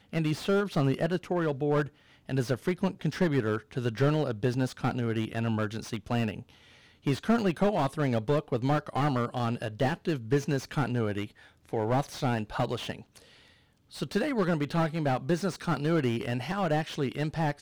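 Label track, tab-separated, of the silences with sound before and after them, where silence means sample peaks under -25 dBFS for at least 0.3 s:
1.820000	2.300000	silence
6.300000	7.070000	silence
11.220000	11.730000	silence
12.920000	14.020000	silence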